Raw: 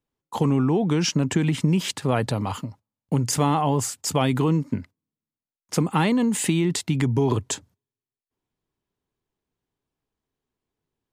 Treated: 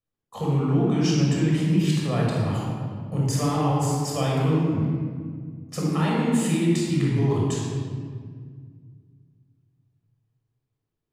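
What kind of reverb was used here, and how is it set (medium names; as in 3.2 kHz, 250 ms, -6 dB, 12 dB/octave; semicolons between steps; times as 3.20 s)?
simulated room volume 3000 m³, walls mixed, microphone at 6.1 m; trim -11 dB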